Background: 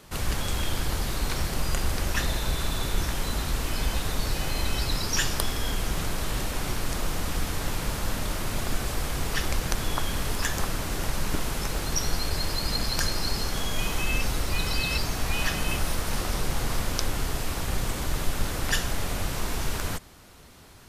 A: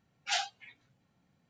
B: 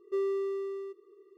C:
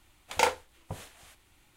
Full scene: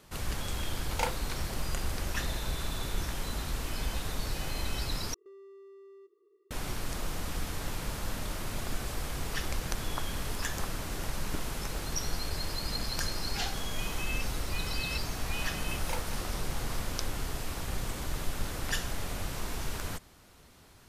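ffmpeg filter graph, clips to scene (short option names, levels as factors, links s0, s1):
-filter_complex "[3:a]asplit=2[s0][s1];[0:a]volume=0.473[s2];[2:a]acompressor=threshold=0.01:ratio=6:attack=3.2:release=140:knee=1:detection=peak[s3];[1:a]acrusher=bits=10:mix=0:aa=0.000001[s4];[s2]asplit=2[s5][s6];[s5]atrim=end=5.144[s7];[s3]atrim=end=1.37,asetpts=PTS-STARTPTS,volume=0.335[s8];[s6]atrim=start=6.506[s9];[s0]atrim=end=1.76,asetpts=PTS-STARTPTS,volume=0.422,afade=t=in:d=0.004:c=hsin,afade=t=out:st=1.756:d=0.004:c=hsin,adelay=600[s10];[s4]atrim=end=1.49,asetpts=PTS-STARTPTS,volume=0.531,afade=t=in:d=0.004:c=hsin,afade=t=out:st=1.486:d=0.004:c=hsin,adelay=13070[s11];[s1]atrim=end=1.76,asetpts=PTS-STARTPTS,volume=0.178,afade=t=in:d=0.004:c=hsin,afade=t=out:st=1.756:d=0.004:c=hsin,adelay=15500[s12];[s7][s8]acrossfade=d=0.004:c1=hsin:c2=hsin[s13];[s13][s9]acrossfade=d=0.004:c1=hsin:c2=hsin[s14];[s14][s10][s11][s12]amix=inputs=4:normalize=0"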